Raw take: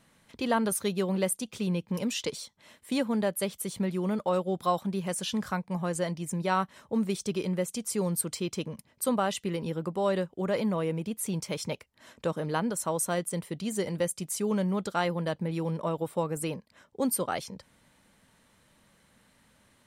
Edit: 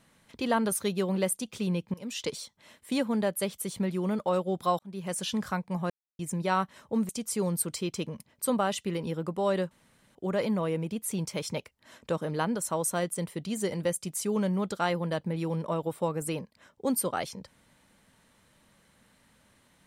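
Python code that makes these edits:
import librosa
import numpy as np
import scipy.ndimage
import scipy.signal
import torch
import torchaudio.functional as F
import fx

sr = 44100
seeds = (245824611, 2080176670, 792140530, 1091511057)

y = fx.edit(x, sr, fx.fade_in_from(start_s=1.94, length_s=0.34, floor_db=-21.5),
    fx.fade_in_span(start_s=4.79, length_s=0.37),
    fx.silence(start_s=5.9, length_s=0.29),
    fx.cut(start_s=7.09, length_s=0.59),
    fx.insert_room_tone(at_s=10.3, length_s=0.44), tone=tone)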